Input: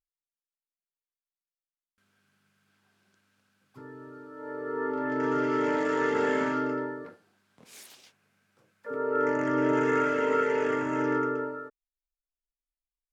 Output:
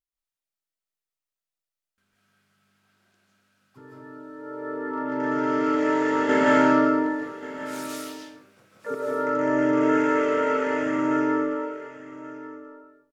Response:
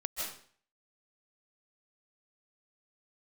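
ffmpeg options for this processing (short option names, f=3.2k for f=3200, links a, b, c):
-filter_complex "[0:a]asettb=1/sr,asplit=3[a][b][c];[a]atrim=end=6.294[d];[b]atrim=start=6.29:end=8.95,asetpts=PTS-STARTPTS,afade=t=in:d=0.004:c=qsin,afade=t=out:st=2.656:d=0.004:c=qsin,acontrast=90[e];[c]atrim=start=8.946[f];[d][e]acrossfade=d=0.004:c1=hsin:c2=qsin[g];[g][f]acrossfade=d=0.004:c1=qsin:c2=hsin,aecho=1:1:1134:0.168[h];[1:a]atrim=start_sample=2205[i];[h][i]afir=irnorm=-1:irlink=0"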